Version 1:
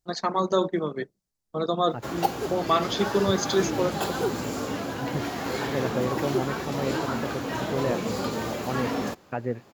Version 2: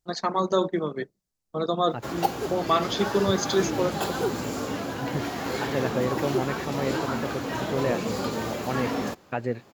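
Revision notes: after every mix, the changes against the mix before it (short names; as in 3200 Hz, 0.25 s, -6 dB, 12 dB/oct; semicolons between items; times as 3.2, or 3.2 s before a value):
second voice: remove air absorption 420 m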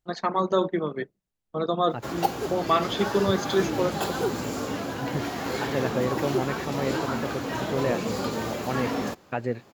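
first voice: add resonant high shelf 3800 Hz -6.5 dB, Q 1.5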